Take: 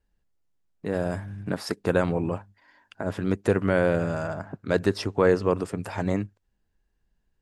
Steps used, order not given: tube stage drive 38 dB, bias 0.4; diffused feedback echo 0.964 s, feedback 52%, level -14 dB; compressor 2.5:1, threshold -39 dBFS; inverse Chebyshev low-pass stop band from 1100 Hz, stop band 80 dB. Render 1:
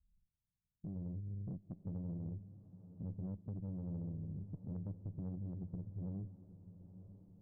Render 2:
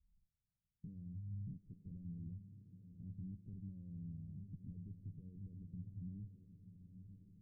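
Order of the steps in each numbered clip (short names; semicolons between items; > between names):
inverse Chebyshev low-pass > compressor > tube stage > diffused feedback echo; compressor > diffused feedback echo > tube stage > inverse Chebyshev low-pass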